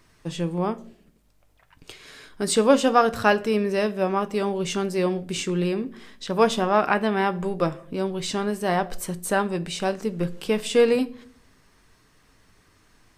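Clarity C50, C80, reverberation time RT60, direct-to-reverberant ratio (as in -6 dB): 20.0 dB, 24.0 dB, 0.55 s, 11.5 dB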